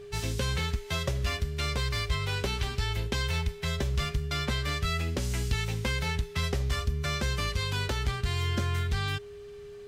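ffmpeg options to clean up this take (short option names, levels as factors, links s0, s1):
-af "bandreject=f=410:w=30"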